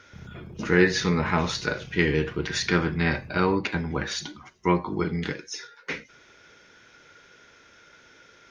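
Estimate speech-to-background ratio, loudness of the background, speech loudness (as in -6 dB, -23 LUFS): 19.0 dB, -45.0 LUFS, -26.0 LUFS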